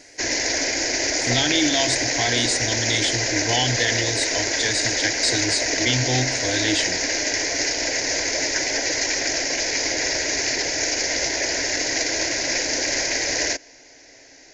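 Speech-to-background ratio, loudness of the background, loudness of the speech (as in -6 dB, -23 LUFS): -3.0 dB, -21.0 LUFS, -24.0 LUFS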